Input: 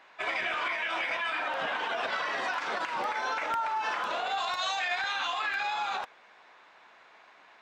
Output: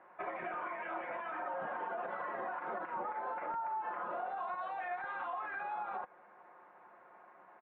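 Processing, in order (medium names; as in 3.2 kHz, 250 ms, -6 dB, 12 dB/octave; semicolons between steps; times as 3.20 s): Bessel low-pass 1 kHz, order 4; bass shelf 90 Hz -6.5 dB; comb 5.6 ms, depth 51%; compression 3:1, threshold -40 dBFS, peak gain reduction 9 dB; trim +1.5 dB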